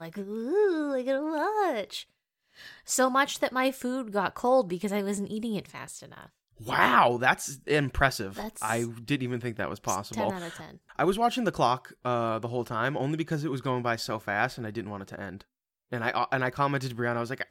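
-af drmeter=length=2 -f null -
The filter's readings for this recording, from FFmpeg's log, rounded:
Channel 1: DR: 17.1
Overall DR: 17.1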